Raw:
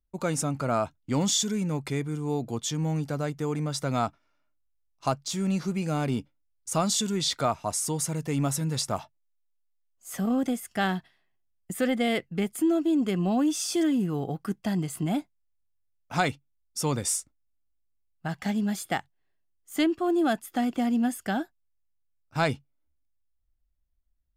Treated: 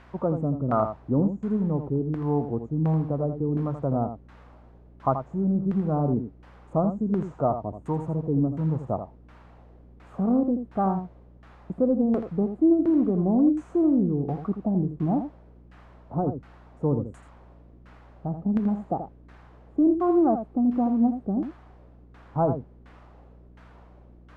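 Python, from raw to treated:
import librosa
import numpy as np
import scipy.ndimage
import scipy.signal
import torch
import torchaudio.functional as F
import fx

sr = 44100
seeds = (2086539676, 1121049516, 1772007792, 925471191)

p1 = scipy.signal.sosfilt(scipy.signal.ellip(3, 1.0, 40, [1200.0, 7100.0], 'bandstop', fs=sr, output='sos'), x)
p2 = fx.add_hum(p1, sr, base_hz=60, snr_db=26)
p3 = fx.quant_dither(p2, sr, seeds[0], bits=6, dither='triangular')
p4 = p2 + F.gain(torch.from_numpy(p3), -9.0).numpy()
p5 = fx.filter_lfo_lowpass(p4, sr, shape='saw_down', hz=1.4, low_hz=290.0, high_hz=1500.0, q=1.2)
p6 = p5 + fx.echo_single(p5, sr, ms=82, db=-9.0, dry=0)
y = fx.doppler_dist(p6, sr, depth_ms=0.11)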